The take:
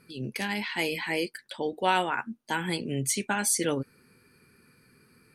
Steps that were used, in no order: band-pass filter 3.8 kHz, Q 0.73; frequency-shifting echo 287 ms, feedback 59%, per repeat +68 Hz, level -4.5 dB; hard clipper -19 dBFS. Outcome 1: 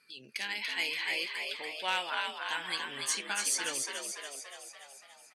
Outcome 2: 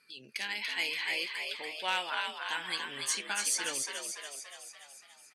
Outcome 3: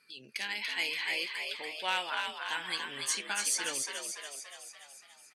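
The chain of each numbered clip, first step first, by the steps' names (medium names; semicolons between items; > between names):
frequency-shifting echo > band-pass filter > hard clipper; band-pass filter > frequency-shifting echo > hard clipper; band-pass filter > hard clipper > frequency-shifting echo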